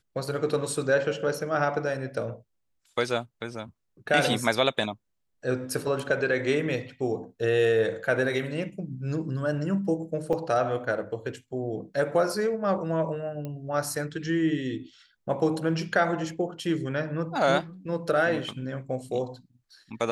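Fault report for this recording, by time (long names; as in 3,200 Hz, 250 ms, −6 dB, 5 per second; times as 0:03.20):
0:10.33: drop-out 4.4 ms
0:13.45: click −23 dBFS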